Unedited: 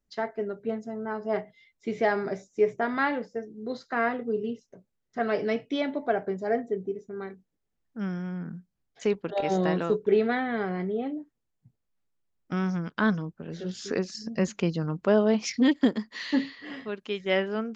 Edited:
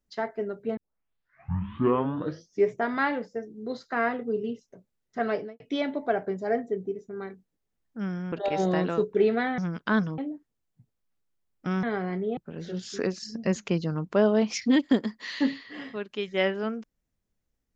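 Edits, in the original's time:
0.77 tape start 1.93 s
5.26–5.6 studio fade out
8.32–9.24 cut
10.5–11.04 swap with 12.69–13.29

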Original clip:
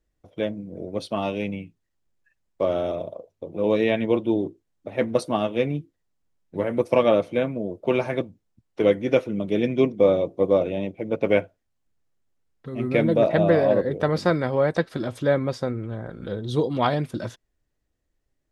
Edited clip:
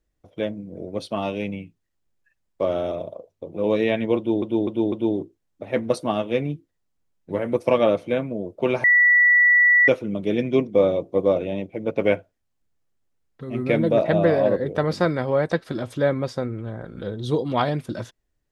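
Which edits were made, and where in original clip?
4.17–4.42 loop, 4 plays
8.09–9.13 bleep 1950 Hz -12 dBFS

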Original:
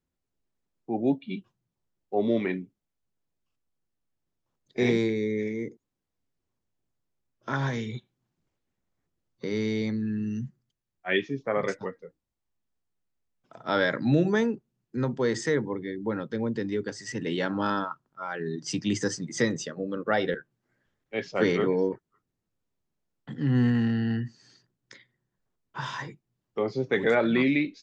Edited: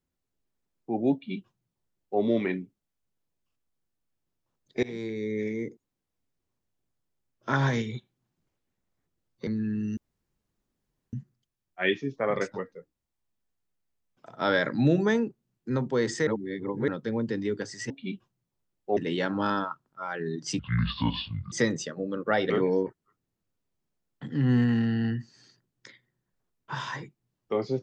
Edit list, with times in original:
1.14–2.21 copy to 17.17
4.83–5.49 fade in, from -22.5 dB
7.49–7.82 gain +3.5 dB
9.47–9.9 cut
10.4 insert room tone 1.16 s
15.54–16.15 reverse
18.79–19.32 speed 57%
20.3–21.56 cut

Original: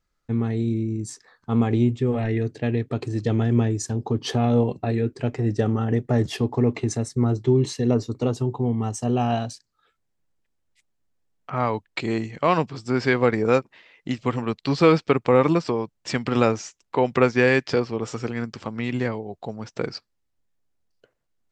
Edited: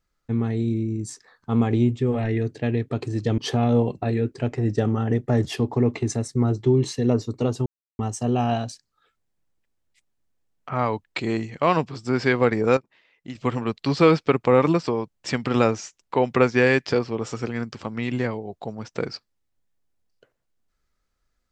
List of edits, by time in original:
3.38–4.19 cut
8.47–8.8 mute
13.58–14.16 gain -9 dB

